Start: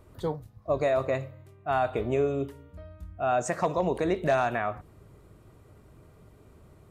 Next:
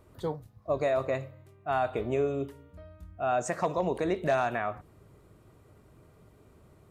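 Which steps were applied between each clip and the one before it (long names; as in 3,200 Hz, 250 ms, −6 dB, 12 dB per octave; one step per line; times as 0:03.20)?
low-shelf EQ 66 Hz −6 dB
level −2 dB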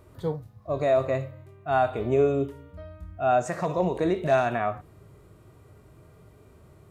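harmonic and percussive parts rebalanced percussive −10 dB
level +7 dB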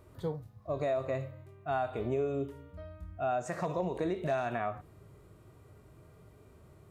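downward compressor 3 to 1, threshold −26 dBFS, peak gain reduction 7.5 dB
level −4 dB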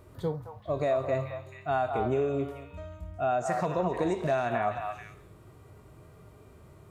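echo through a band-pass that steps 218 ms, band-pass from 960 Hz, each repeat 1.4 octaves, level −2.5 dB
level +4 dB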